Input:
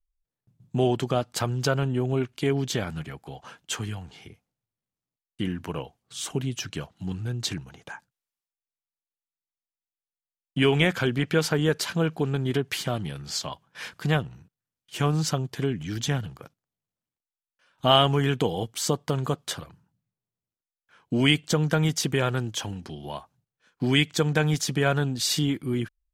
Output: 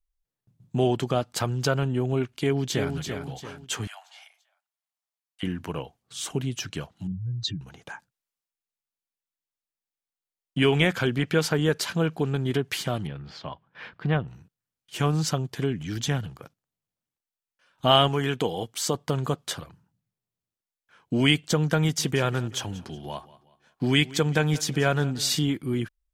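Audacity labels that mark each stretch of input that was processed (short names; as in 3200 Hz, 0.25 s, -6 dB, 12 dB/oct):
2.340000	2.960000	echo throw 0.34 s, feedback 40%, level -6 dB
3.870000	5.430000	steep high-pass 620 Hz 72 dB/oct
7.070000	7.610000	spectral contrast raised exponent 2.4
13.070000	14.280000	air absorption 350 m
18.080000	18.950000	low shelf 180 Hz -7.5 dB
21.800000	25.360000	feedback echo 0.185 s, feedback 40%, level -19 dB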